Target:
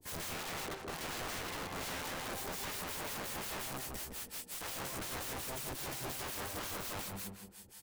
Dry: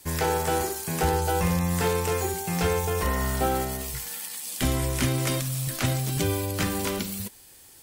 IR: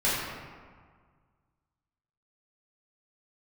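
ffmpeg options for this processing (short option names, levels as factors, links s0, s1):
-filter_complex "[0:a]asettb=1/sr,asplit=3[s0][s1][s2];[s0]atrim=end=5.294[s3];[s1]atrim=start=5.29:end=5.76,asetpts=PTS-STARTPTS,afade=t=in:d=0.004:c=qsin,afade=t=out:st=0.466:d=0.004:c=qsin,asubboost=boost=7:cutoff=100[s4];[s2]atrim=start=5.756[s5];[s3][s4]acrossfade=d=0.004:c1=hsin:c2=qsin[s6];[s6][s5]acrossfade=d=0.004:c1=qsin:c2=hsin,asplit=2[s7][s8];[s8]acompressor=threshold=0.01:ratio=6,volume=1.06[s9];[s7][s9]amix=inputs=2:normalize=0,flanger=delay=20:depth=4.4:speed=1.5,asettb=1/sr,asplit=3[s10][s11][s12];[s10]atrim=end=0.374[s13];[s11]atrim=start=0.37:end=2.3,asetpts=PTS-STARTPTS,afade=t=in:d=0.004:c=qsin,afade=t=out:st=1.926:d=0.004:c=qsin,adynamicsmooth=sensitivity=7.5:basefreq=1100[s14];[s12]atrim=start=2.296[s15];[s13][s14]acrossfade=d=0.004:c1=hsin:c2=qsin[s16];[s16][s15]acrossfade=d=0.004:c1=qsin:c2=hsin,asoftclip=type=tanh:threshold=0.126,acrossover=split=570[s17][s18];[s17]aeval=exprs='val(0)*(1-1/2+1/2*cos(2*PI*5.6*n/s))':c=same[s19];[s18]aeval=exprs='val(0)*(1-1/2-1/2*cos(2*PI*5.6*n/s))':c=same[s20];[s19][s20]amix=inputs=2:normalize=0,aeval=exprs='(mod(44.7*val(0)+1,2)-1)/44.7':c=same,asplit=2[s21][s22];[s22]adelay=163,lowpass=f=1700:p=1,volume=0.668,asplit=2[s23][s24];[s24]adelay=163,lowpass=f=1700:p=1,volume=0.35,asplit=2[s25][s26];[s26]adelay=163,lowpass=f=1700:p=1,volume=0.35,asplit=2[s27][s28];[s28]adelay=163,lowpass=f=1700:p=1,volume=0.35,asplit=2[s29][s30];[s30]adelay=163,lowpass=f=1700:p=1,volume=0.35[s31];[s21][s23][s25][s27][s29][s31]amix=inputs=6:normalize=0,volume=0.631"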